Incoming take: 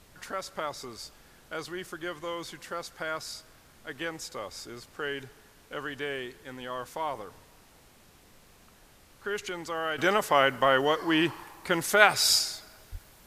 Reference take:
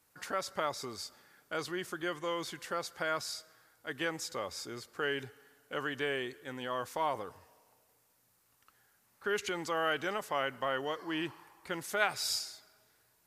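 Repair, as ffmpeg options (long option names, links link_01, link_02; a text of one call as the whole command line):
ffmpeg -i in.wav -filter_complex "[0:a]asplit=3[link_01][link_02][link_03];[link_01]afade=type=out:start_time=12.91:duration=0.02[link_04];[link_02]highpass=frequency=140:width=0.5412,highpass=frequency=140:width=1.3066,afade=type=in:start_time=12.91:duration=0.02,afade=type=out:start_time=13.03:duration=0.02[link_05];[link_03]afade=type=in:start_time=13.03:duration=0.02[link_06];[link_04][link_05][link_06]amix=inputs=3:normalize=0,agate=range=-21dB:threshold=-49dB,asetnsamples=nb_out_samples=441:pad=0,asendcmd='9.98 volume volume -11dB',volume=0dB" out.wav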